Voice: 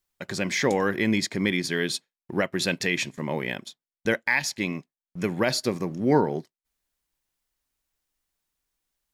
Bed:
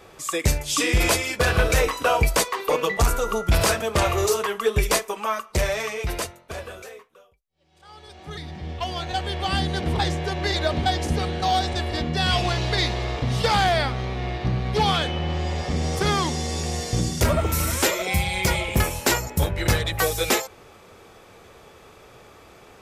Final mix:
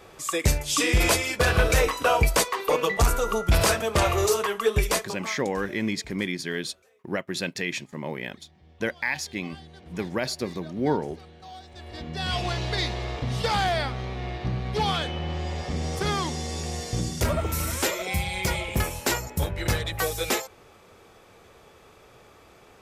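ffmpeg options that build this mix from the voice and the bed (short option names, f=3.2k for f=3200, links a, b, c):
-filter_complex "[0:a]adelay=4750,volume=-4dB[a];[1:a]volume=16.5dB,afade=t=out:st=4.73:d=0.71:silence=0.0891251,afade=t=in:st=11.7:d=0.81:silence=0.133352[b];[a][b]amix=inputs=2:normalize=0"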